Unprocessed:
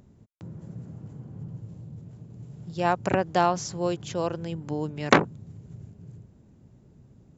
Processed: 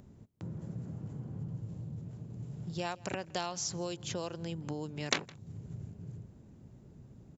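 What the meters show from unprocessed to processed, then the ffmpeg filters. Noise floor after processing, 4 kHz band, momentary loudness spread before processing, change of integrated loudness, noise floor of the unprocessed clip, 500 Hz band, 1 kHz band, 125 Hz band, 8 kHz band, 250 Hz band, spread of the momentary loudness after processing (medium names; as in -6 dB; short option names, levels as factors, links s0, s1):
-57 dBFS, -2.5 dB, 22 LU, -12.5 dB, -57 dBFS, -13.0 dB, -15.5 dB, -5.5 dB, no reading, -10.0 dB, 20 LU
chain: -filter_complex "[0:a]acrossover=split=2900[s0][s1];[s0]acompressor=threshold=0.0178:ratio=6[s2];[s2][s1]amix=inputs=2:normalize=0,asplit=2[s3][s4];[s4]adelay=163.3,volume=0.0708,highshelf=f=4000:g=-3.67[s5];[s3][s5]amix=inputs=2:normalize=0"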